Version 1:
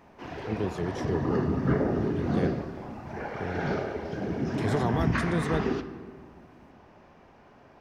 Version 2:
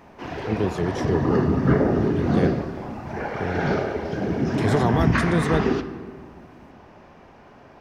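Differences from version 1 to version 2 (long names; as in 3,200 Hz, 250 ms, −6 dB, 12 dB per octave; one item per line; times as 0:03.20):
speech +6.5 dB
background +6.5 dB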